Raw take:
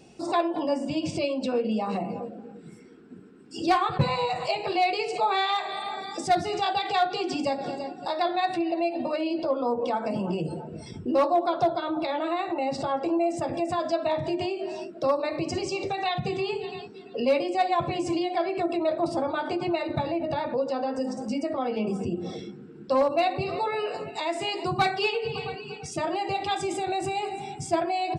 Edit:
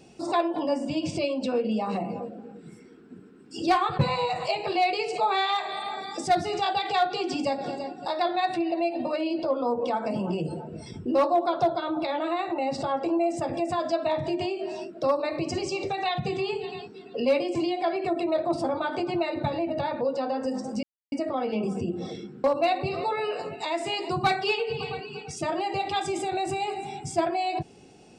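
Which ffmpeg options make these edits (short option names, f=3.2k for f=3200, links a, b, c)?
-filter_complex "[0:a]asplit=4[a][b][c][d];[a]atrim=end=17.552[e];[b]atrim=start=18.078:end=21.36,asetpts=PTS-STARTPTS,afade=t=out:st=3.278:d=0.004:c=hsin,apad=pad_dur=0.29[f];[c]atrim=start=21.36:end=22.682,asetpts=PTS-STARTPTS,afade=t=in:d=0.004:c=hsin[g];[d]atrim=start=22.988[h];[f][g]concat=n=2:v=0:a=1[i];[e][i]acrossfade=d=0.004:c1=hsin:c2=hsin[j];[j][h]acrossfade=d=0.004:c1=hsin:c2=hsin"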